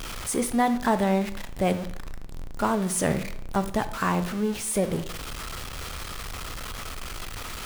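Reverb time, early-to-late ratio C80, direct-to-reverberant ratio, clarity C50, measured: 0.70 s, 17.0 dB, 10.5 dB, 14.0 dB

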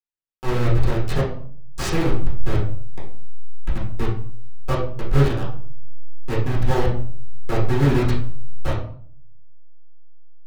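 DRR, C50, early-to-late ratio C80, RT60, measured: -8.0 dB, 5.0 dB, 10.0 dB, 0.50 s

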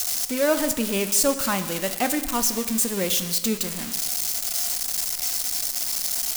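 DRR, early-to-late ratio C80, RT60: 9.0 dB, 12.5 dB, 1.3 s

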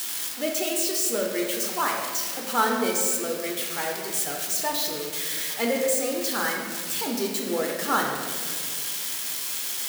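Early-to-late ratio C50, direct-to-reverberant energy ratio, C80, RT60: 2.5 dB, -1.0 dB, 4.5 dB, 2.0 s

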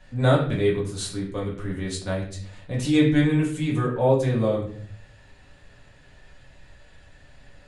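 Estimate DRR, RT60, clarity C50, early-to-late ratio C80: -5.0 dB, 0.55 s, 6.5 dB, 10.0 dB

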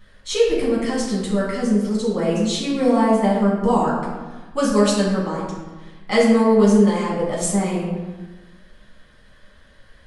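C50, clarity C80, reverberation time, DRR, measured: 1.0 dB, 3.5 dB, 1.3 s, -6.5 dB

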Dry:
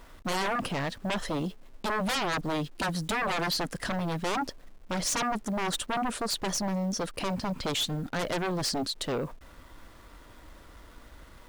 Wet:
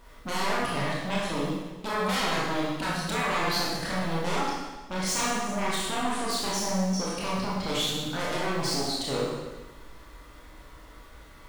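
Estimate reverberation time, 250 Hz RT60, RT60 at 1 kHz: 1.2 s, 1.2 s, 1.2 s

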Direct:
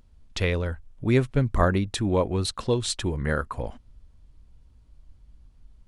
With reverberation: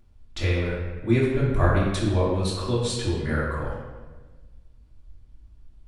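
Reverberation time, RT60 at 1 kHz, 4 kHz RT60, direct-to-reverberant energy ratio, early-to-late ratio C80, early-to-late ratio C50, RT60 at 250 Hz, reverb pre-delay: 1.3 s, 1.2 s, 0.95 s, -7.5 dB, 3.0 dB, 0.5 dB, 1.6 s, 3 ms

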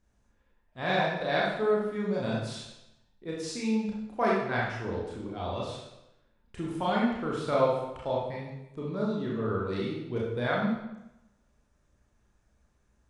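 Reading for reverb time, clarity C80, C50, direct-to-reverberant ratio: 0.90 s, 4.0 dB, 0.5 dB, -5.0 dB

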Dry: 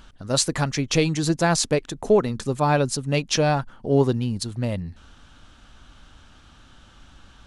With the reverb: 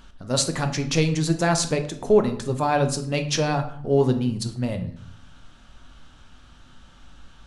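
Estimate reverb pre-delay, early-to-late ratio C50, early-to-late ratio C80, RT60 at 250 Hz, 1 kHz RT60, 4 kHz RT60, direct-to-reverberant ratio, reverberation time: 3 ms, 11.0 dB, 14.5 dB, 0.80 s, 0.60 s, 0.40 s, 6.0 dB, 0.60 s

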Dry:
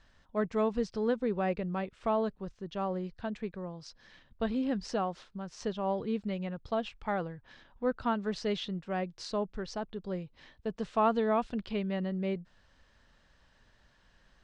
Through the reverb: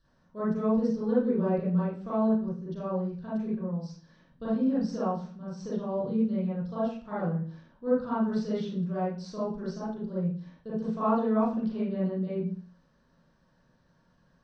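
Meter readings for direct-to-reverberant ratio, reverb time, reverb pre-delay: -11.0 dB, 0.45 s, 33 ms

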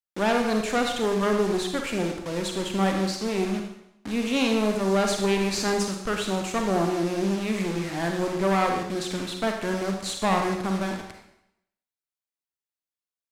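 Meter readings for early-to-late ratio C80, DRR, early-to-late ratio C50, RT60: 7.5 dB, 3.0 dB, 4.5 dB, 0.80 s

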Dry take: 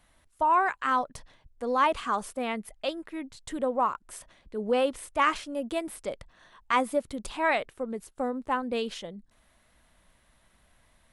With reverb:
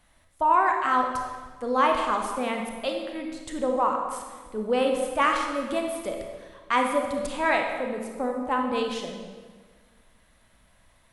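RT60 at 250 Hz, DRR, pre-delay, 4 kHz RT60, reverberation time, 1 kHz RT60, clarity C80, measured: 1.8 s, 2.0 dB, 28 ms, 1.2 s, 1.6 s, 1.5 s, 5.5 dB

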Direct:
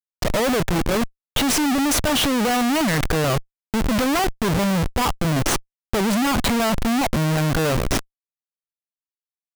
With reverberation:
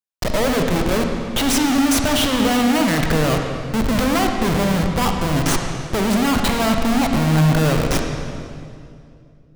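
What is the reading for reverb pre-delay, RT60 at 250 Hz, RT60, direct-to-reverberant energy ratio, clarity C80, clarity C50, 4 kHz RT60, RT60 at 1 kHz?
37 ms, 2.9 s, 2.4 s, 3.0 dB, 4.5 dB, 3.5 dB, 1.9 s, 2.2 s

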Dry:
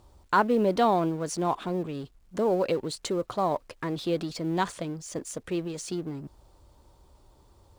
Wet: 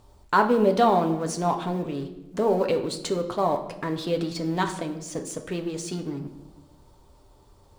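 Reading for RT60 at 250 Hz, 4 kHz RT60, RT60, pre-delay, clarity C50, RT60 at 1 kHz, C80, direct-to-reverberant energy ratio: 1.5 s, 0.75 s, 1.0 s, 4 ms, 10.5 dB, 0.85 s, 13.0 dB, 4.0 dB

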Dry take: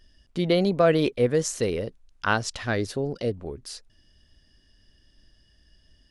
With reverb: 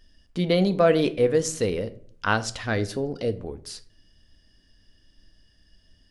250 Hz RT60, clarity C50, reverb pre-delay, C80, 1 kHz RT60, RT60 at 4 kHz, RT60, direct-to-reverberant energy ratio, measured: 0.75 s, 17.5 dB, 4 ms, 21.0 dB, 0.45 s, 0.35 s, 0.55 s, 10.5 dB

